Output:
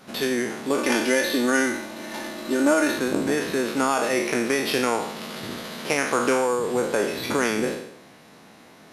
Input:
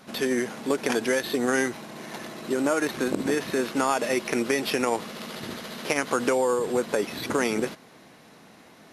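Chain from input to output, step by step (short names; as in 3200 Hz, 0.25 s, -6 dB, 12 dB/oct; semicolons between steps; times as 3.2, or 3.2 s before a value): spectral trails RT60 0.75 s; 0.78–2.99 comb 3.4 ms, depth 68%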